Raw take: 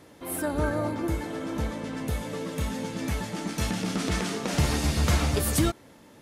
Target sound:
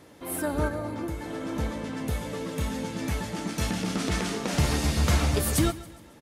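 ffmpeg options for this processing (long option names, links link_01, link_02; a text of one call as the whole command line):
ffmpeg -i in.wav -filter_complex "[0:a]asettb=1/sr,asplit=3[link_01][link_02][link_03];[link_01]atrim=end=0.674[link_04];[link_02]atrim=start=0.67:end=1.45,asetpts=PTS-STARTPTS,afade=type=in:duration=0.004:curve=qsin,afade=type=out:start_time=0.776:duration=0.004:curve=qsin,acompressor=threshold=-29dB:ratio=6[link_05];[link_03]atrim=start=1.446[link_06];[link_04][link_05]acrossfade=duration=0.004:curve1=hsin:curve2=qsin[link_07];[link_07][link_06]acrossfade=duration=0.004:curve1=qsin:curve2=hsin,aecho=1:1:137|274|411|548:0.126|0.0579|0.0266|0.0123" out.wav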